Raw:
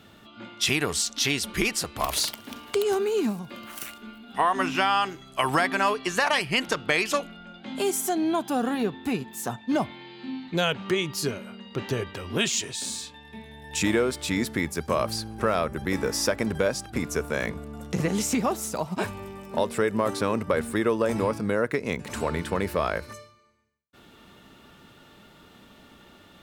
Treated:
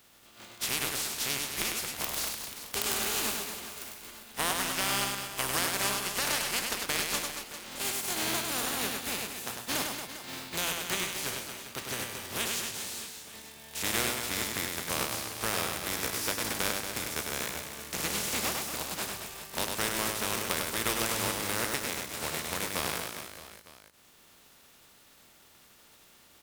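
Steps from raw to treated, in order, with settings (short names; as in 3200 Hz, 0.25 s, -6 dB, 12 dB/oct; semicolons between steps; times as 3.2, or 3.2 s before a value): spectral contrast lowered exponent 0.27; reverse bouncing-ball echo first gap 0.1 s, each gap 1.3×, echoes 5; gain -8 dB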